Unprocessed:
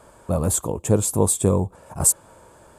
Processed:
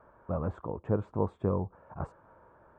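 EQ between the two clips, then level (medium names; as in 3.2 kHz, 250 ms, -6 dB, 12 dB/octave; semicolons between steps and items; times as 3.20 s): four-pole ladder low-pass 1.8 kHz, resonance 35%; -3.0 dB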